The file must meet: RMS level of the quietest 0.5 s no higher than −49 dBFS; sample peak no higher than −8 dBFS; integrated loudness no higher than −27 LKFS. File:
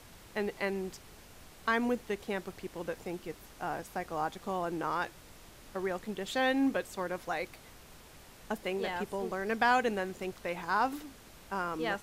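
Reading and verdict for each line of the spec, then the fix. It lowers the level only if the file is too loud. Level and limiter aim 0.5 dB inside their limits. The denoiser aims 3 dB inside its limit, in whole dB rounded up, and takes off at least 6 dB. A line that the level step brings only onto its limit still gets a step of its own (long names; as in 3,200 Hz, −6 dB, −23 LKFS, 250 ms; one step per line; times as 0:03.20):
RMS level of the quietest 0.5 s −54 dBFS: in spec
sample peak −15.0 dBFS: in spec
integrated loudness −34.5 LKFS: in spec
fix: no processing needed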